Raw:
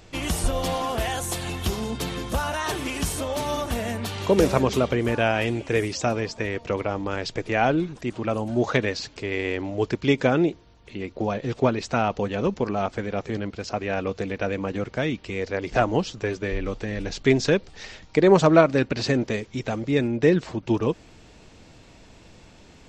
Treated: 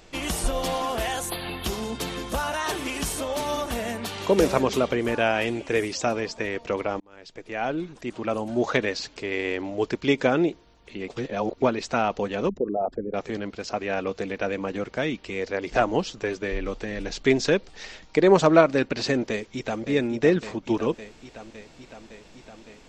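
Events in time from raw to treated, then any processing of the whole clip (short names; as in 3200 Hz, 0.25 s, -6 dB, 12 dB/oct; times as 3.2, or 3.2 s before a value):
1.3–1.64 spectral delete 4900–10000 Hz
7–8.34 fade in linear
11.08–11.62 reverse
12.49–13.14 formant sharpening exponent 3
19.3–19.82 echo throw 0.56 s, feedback 75%, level -8 dB
whole clip: bell 97 Hz -9.5 dB 1.4 oct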